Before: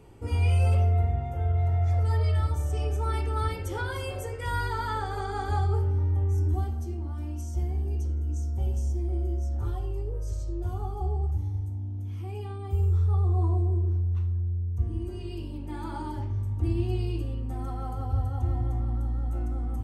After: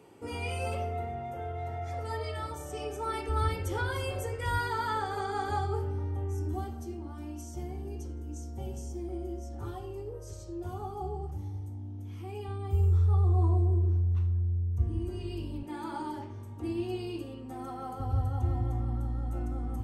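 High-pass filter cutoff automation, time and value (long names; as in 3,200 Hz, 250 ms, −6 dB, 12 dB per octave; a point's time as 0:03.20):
210 Hz
from 0:03.29 55 Hz
from 0:04.58 140 Hz
from 0:12.48 52 Hz
from 0:15.63 220 Hz
from 0:18.00 69 Hz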